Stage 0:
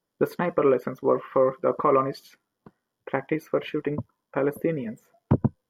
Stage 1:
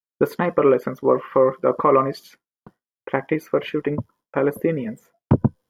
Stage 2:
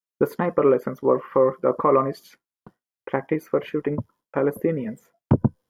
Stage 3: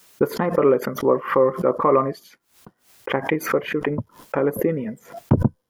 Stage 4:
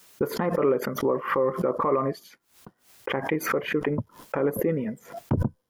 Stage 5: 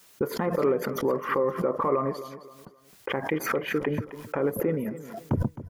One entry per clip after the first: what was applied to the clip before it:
expander -50 dBFS; gain +4.5 dB
dynamic EQ 3300 Hz, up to -7 dB, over -42 dBFS, Q 0.8; gain -1.5 dB
backwards sustainer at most 140 dB/s; gain +1 dB
limiter -13 dBFS, peak gain reduction 7.5 dB; gain -1.5 dB
feedback echo 0.263 s, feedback 33%, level -14 dB; gain -1.5 dB

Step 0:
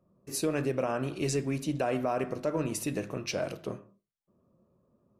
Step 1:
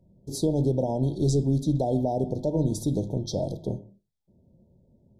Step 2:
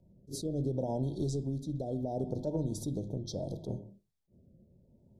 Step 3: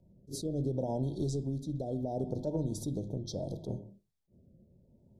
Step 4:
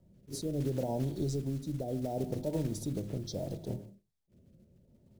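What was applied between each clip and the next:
RIAA curve playback; FFT band-reject 950–3200 Hz; high shelf 2200 Hz +10.5 dB
compressor, threshold -29 dBFS, peak gain reduction 10 dB; rotary speaker horn 0.7 Hz; attack slew limiter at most 270 dB/s
nothing audible
block floating point 5-bit

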